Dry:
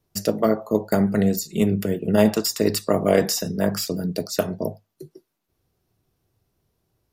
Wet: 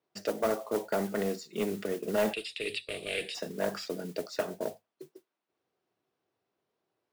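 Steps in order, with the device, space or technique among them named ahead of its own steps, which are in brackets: carbon microphone (BPF 360–3300 Hz; soft clip -17 dBFS, distortion -11 dB; modulation noise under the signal 17 dB); 2.33–3.35 EQ curve 110 Hz 0 dB, 230 Hz -13 dB, 420 Hz -6 dB, 1000 Hz -23 dB, 1600 Hz -12 dB, 2500 Hz +12 dB, 3800 Hz +8 dB, 6200 Hz -18 dB, 9100 Hz +5 dB, 14000 Hz -23 dB; gain -4 dB

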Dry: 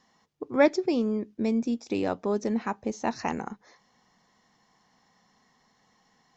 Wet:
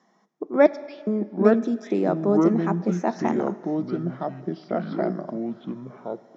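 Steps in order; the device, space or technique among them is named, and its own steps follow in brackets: 0.66–1.07 Chebyshev band-pass 2200–4400 Hz, order 2; echoes that change speed 0.652 s, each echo -5 st, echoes 2; television speaker (speaker cabinet 180–6700 Hz, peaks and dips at 190 Hz +9 dB, 360 Hz +9 dB, 650 Hz +8 dB, 1300 Hz +3 dB, 2800 Hz -9 dB, 4400 Hz -10 dB); plate-style reverb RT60 2 s, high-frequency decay 0.95×, DRR 16.5 dB

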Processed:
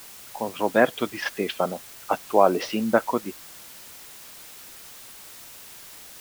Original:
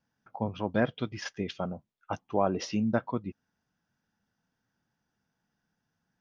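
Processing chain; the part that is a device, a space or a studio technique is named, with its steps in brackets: dictaphone (BPF 340–3600 Hz; AGC; wow and flutter; white noise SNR 17 dB)

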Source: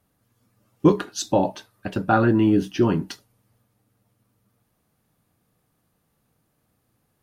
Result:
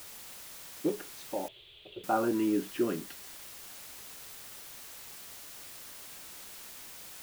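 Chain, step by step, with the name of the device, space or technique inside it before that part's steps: shortwave radio (BPF 330–2500 Hz; tremolo 0.38 Hz, depth 61%; LFO notch saw up 0.43 Hz 710–1900 Hz; white noise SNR 10 dB); 1.48–2.04 EQ curve 130 Hz 0 dB, 260 Hz -27 dB, 360 Hz 0 dB, 840 Hz -16 dB, 1700 Hz -15 dB, 3400 Hz +7 dB, 5400 Hz -28 dB; gain -5.5 dB

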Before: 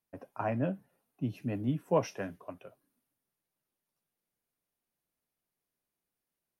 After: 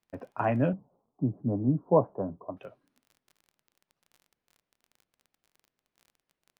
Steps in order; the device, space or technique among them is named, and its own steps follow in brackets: lo-fi chain (LPF 3700 Hz; wow and flutter; crackle 28/s -51 dBFS); 0.73–2.57 steep low-pass 1100 Hz 48 dB/oct; gain +5.5 dB

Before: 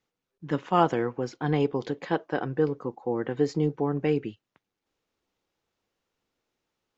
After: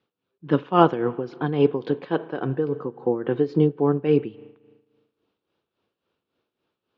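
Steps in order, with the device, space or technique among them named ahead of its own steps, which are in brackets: combo amplifier with spring reverb and tremolo (spring tank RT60 1.5 s, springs 37 ms, chirp 60 ms, DRR 19 dB; tremolo 3.6 Hz, depth 69%; speaker cabinet 89–3900 Hz, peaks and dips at 380 Hz +3 dB, 800 Hz -4 dB, 2000 Hz -9 dB); gain +7.5 dB

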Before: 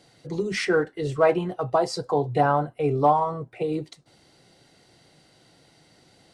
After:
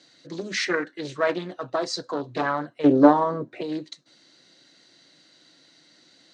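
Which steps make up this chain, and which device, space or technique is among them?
full-range speaker at full volume (Doppler distortion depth 0.39 ms; speaker cabinet 250–7800 Hz, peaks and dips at 290 Hz +5 dB, 430 Hz -8 dB, 790 Hz -10 dB, 1700 Hz +5 dB, 4000 Hz +9 dB, 6300 Hz +6 dB); 2.84–3.61 bell 310 Hz +13 dB 2.7 oct; gain -1 dB

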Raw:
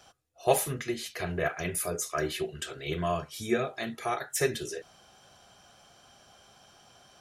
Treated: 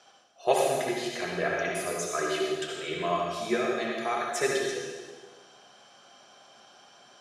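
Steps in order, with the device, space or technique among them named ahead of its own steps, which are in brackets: supermarket ceiling speaker (BPF 260–6900 Hz; reverb RT60 1.4 s, pre-delay 60 ms, DRR -1 dB)

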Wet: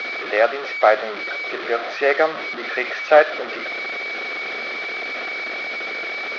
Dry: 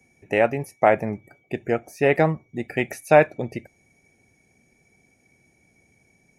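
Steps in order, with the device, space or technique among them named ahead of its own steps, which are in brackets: digital answering machine (BPF 380–3300 Hz; delta modulation 32 kbps, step -25 dBFS; speaker cabinet 480–3900 Hz, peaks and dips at 910 Hz -10 dB, 1300 Hz +6 dB, 2800 Hz -6 dB); gain +6 dB

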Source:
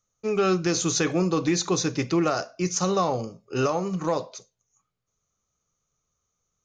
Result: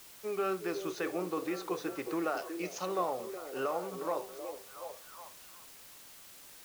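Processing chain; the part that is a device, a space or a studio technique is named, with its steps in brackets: 2.37–2.86 resonant high shelf 2100 Hz +7 dB, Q 1.5; wax cylinder (BPF 370–2300 Hz; wow and flutter; white noise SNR 15 dB); delay with a stepping band-pass 0.368 s, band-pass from 380 Hz, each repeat 0.7 oct, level -6 dB; gain -8 dB

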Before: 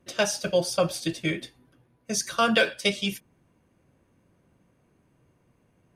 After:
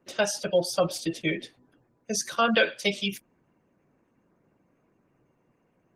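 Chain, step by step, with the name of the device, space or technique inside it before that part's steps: 0.93–2.16 dynamic EQ 460 Hz, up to +4 dB, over -48 dBFS, Q 4.1; noise-suppressed video call (HPF 160 Hz 12 dB/oct; spectral gate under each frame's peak -25 dB strong; Opus 16 kbps 48000 Hz)

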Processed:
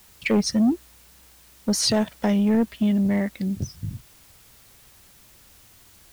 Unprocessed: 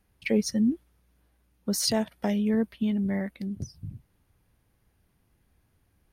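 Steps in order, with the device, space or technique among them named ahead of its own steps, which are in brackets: compact cassette (soft clip -21.5 dBFS, distortion -15 dB; LPF 8700 Hz; wow and flutter; white noise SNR 28 dB); gain +7.5 dB

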